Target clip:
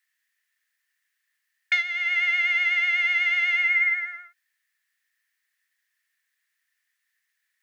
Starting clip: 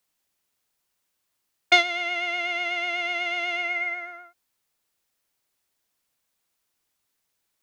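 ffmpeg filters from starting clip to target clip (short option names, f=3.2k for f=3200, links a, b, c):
-af "highpass=f=1.8k:t=q:w=12,alimiter=limit=-9dB:level=0:latency=1:release=454,volume=-4dB"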